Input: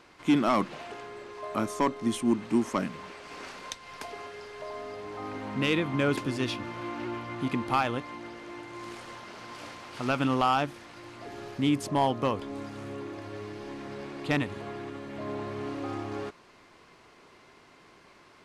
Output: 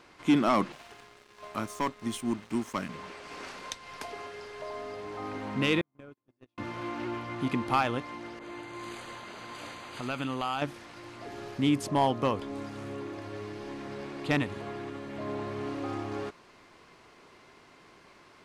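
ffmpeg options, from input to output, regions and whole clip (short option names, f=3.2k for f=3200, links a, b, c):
-filter_complex "[0:a]asettb=1/sr,asplit=3[a][b][c];[a]atrim=end=0.724[d];[b]atrim=start=0.72:end=2.89,asetpts=PTS-STARTPTS,afade=t=in:d=0.004:c=qsin,afade=t=out:st=2.166:d=0.004:c=qsin,equalizer=f=390:t=o:w=2.2:g=-6.5,aeval=exprs='sgn(val(0))*max(abs(val(0))-0.00422,0)':c=same[e];[c]atrim=start=2.886[f];[d][e]acrossfade=d=0.004:c1=hsin:c2=qsin[g];[g][f]acrossfade=d=0.004:c1=qsin:c2=hsin,asettb=1/sr,asplit=3[h][i][j];[h]atrim=end=5.814[k];[i]atrim=start=5.81:end=6.58,asetpts=PTS-STARTPTS,afade=t=in:d=0.004:c=qsin,afade=t=out:st=0.766:d=0.004:c=qsin,agate=range=-49dB:threshold=-24dB:ratio=16:release=100:detection=peak,equalizer=f=4.7k:w=0.44:g=-8,acompressor=threshold=-44dB:ratio=16:attack=3.2:release=140:knee=1:detection=peak[l];[j]atrim=start=6.576[m];[k][l]acrossfade=d=0.004:c1=hsin:c2=qsin[n];[n][m]acrossfade=d=0.004:c1=qsin:c2=hsin,asettb=1/sr,asplit=3[o][p][q];[o]atrim=end=8.394[r];[p]atrim=start=8.39:end=10.62,asetpts=PTS-STARTPTS,afade=t=in:d=0.004:c=qsin,afade=t=out:st=2.226:d=0.004:c=qsin,asuperstop=centerf=5400:order=8:qfactor=5.8,acompressor=threshold=-35dB:ratio=2:attack=3.2:release=140:knee=1:detection=peak,adynamicequalizer=threshold=0.00631:dfrequency=1800:dqfactor=0.7:tfrequency=1800:tqfactor=0.7:attack=5:release=100:ratio=0.375:range=2.5:mode=boostabove:tftype=highshelf[s];[q]atrim=start=10.616[t];[r][s]acrossfade=d=0.004:c1=hsin:c2=qsin[u];[u][t]acrossfade=d=0.004:c1=qsin:c2=hsin"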